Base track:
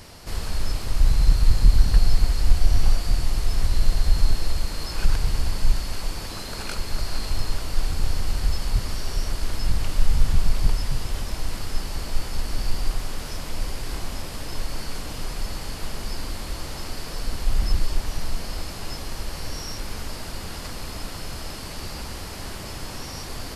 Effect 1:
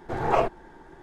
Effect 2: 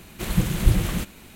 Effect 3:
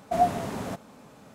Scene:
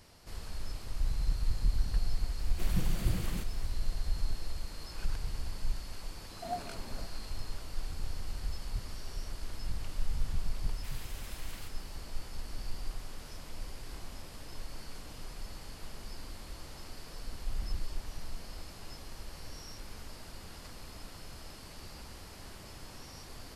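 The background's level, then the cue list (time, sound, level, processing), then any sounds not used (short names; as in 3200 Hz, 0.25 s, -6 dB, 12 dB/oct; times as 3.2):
base track -14 dB
2.39 add 2 -12.5 dB
6.31 add 3 -15.5 dB
10.64 add 2 -16.5 dB + HPF 1300 Hz
not used: 1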